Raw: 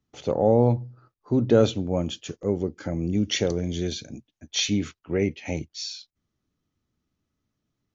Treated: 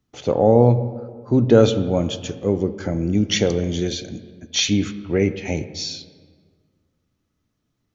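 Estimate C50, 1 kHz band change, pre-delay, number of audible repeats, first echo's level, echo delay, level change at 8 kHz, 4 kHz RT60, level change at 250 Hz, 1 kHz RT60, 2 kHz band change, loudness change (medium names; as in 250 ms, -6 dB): 13.0 dB, +5.5 dB, 4 ms, no echo, no echo, no echo, no reading, 1.1 s, +5.5 dB, 1.6 s, +5.5 dB, +5.5 dB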